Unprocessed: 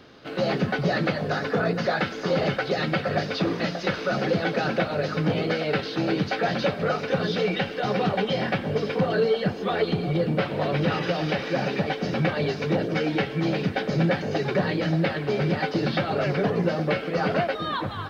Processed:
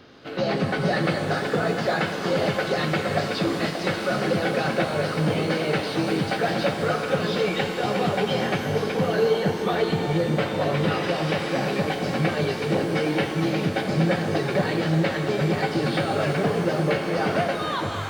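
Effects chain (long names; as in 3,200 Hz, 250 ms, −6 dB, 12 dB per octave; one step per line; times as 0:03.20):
reverb with rising layers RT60 3 s, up +12 semitones, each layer −8 dB, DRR 5.5 dB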